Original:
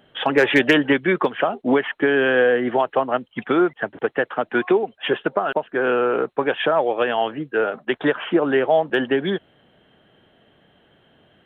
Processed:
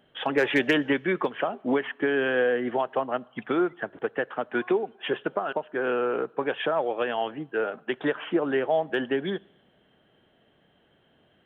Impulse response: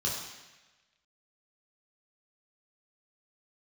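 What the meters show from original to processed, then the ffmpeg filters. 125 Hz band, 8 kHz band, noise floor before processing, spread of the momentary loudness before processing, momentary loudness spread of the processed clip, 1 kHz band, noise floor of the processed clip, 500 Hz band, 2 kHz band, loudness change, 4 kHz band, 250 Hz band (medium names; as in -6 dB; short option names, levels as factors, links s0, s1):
-7.0 dB, no reading, -58 dBFS, 7 LU, 7 LU, -7.0 dB, -64 dBFS, -6.5 dB, -7.0 dB, -7.0 dB, -7.5 dB, -6.5 dB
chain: -filter_complex "[0:a]asplit=2[s0][s1];[1:a]atrim=start_sample=2205[s2];[s1][s2]afir=irnorm=-1:irlink=0,volume=0.0355[s3];[s0][s3]amix=inputs=2:normalize=0,volume=0.447"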